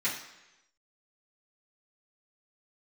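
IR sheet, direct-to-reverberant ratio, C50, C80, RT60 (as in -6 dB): -12.0 dB, 6.0 dB, 9.0 dB, 1.0 s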